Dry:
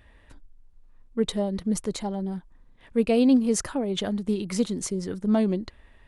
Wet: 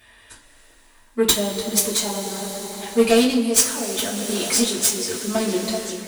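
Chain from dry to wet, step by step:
spectral tilt +4 dB per octave
harmonic generator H 7 −11 dB, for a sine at −3 dBFS
echo through a band-pass that steps 383 ms, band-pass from 510 Hz, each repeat 0.7 octaves, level −8 dB
coupled-rooms reverb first 0.21 s, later 4.8 s, from −20 dB, DRR −8.5 dB
automatic gain control gain up to 6.5 dB
level −1 dB

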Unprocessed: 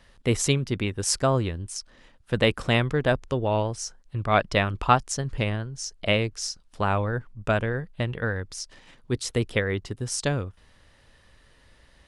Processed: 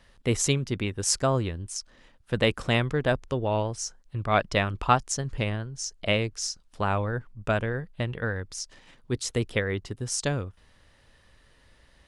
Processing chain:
dynamic equaliser 6,700 Hz, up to +4 dB, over −46 dBFS, Q 2.5
level −2 dB

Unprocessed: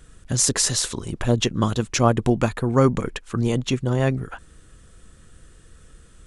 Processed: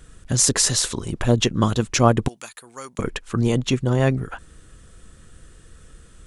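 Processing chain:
0:02.28–0:02.99: first difference
level +2 dB

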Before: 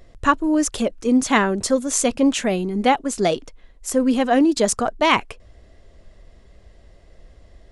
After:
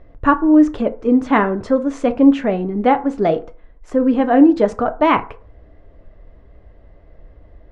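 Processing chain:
low-pass filter 1,600 Hz 12 dB per octave
feedback delay network reverb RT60 0.4 s, low-frequency decay 0.8×, high-frequency decay 0.5×, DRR 8 dB
level +3 dB

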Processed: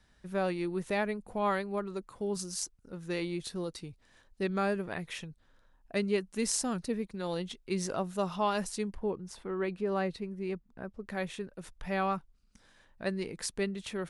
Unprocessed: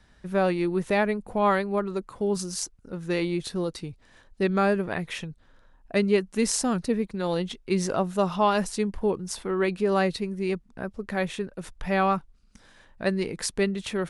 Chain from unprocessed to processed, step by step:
high-shelf EQ 3,600 Hz +4.5 dB, from 0:08.95 −8.5 dB, from 0:11.06 +2 dB
level −8 dB

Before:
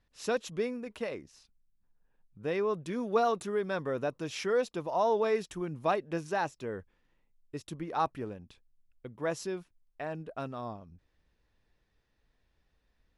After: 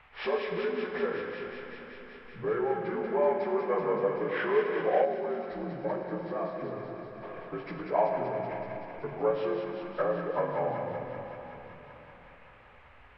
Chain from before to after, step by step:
partials spread apart or drawn together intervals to 81%
low-shelf EQ 350 Hz +12 dB
downward compressor 3 to 1, threshold −43 dBFS, peak gain reduction 18 dB
flat-topped bell 1,000 Hz +16 dB 2.8 octaves
delay with a high-pass on its return 190 ms, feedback 81%, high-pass 1,700 Hz, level −4 dB
rectangular room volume 160 cubic metres, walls hard, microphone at 0.35 metres
noise in a band 690–2,600 Hz −60 dBFS
gain on a spectral selection 0:05.05–0:07.23, 360–3,700 Hz −7 dB

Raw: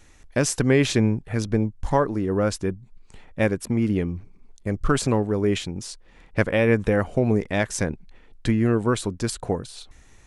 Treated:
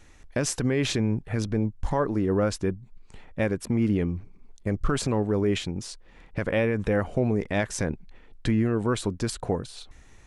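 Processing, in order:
high-shelf EQ 5,800 Hz −5.5 dB
brickwall limiter −15 dBFS, peak gain reduction 10.5 dB

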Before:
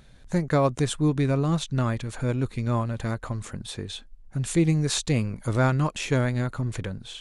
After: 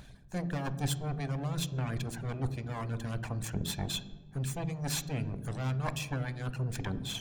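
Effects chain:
lower of the sound and its delayed copy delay 1.2 ms
reversed playback
downward compressor 10 to 1, threshold −34 dBFS, peak gain reduction 15.5 dB
reversed playback
harmonic and percussive parts rebalanced percussive +5 dB
reverb reduction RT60 0.73 s
on a send: convolution reverb RT60 1.2 s, pre-delay 3 ms, DRR 11 dB

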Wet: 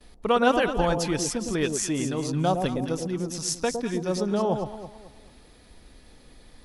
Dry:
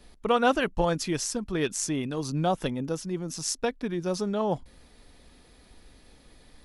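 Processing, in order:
noise gate with hold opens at −49 dBFS
delay that swaps between a low-pass and a high-pass 109 ms, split 890 Hz, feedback 59%, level −5 dB
level +1.5 dB

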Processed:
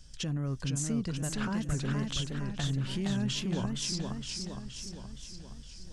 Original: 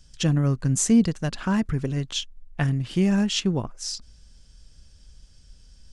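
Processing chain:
downward compressor, threshold −26 dBFS, peak gain reduction 12 dB
brickwall limiter −25.5 dBFS, peak gain reduction 10 dB
feedback echo with a swinging delay time 468 ms, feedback 58%, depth 142 cents, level −4 dB

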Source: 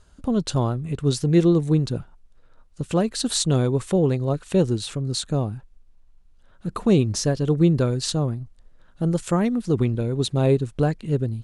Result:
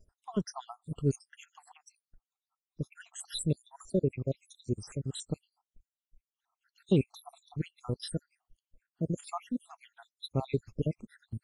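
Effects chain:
time-frequency cells dropped at random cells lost 80%
noise gate −55 dBFS, range −9 dB
level −6.5 dB
Ogg Vorbis 48 kbit/s 44,100 Hz

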